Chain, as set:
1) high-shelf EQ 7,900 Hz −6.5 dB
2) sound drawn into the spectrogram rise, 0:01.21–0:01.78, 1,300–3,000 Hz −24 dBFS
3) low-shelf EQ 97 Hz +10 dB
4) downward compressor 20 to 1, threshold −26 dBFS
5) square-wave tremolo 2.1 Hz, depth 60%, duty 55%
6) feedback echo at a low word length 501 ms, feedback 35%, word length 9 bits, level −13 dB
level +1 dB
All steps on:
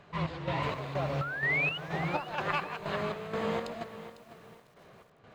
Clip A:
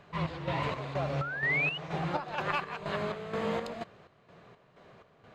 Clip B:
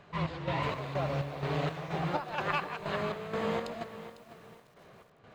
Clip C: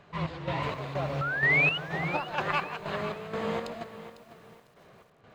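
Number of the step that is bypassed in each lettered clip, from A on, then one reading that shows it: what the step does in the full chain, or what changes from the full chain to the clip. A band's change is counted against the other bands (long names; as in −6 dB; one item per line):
6, change in momentary loudness spread −7 LU
2, 2 kHz band −6.5 dB
4, change in momentary loudness spread +2 LU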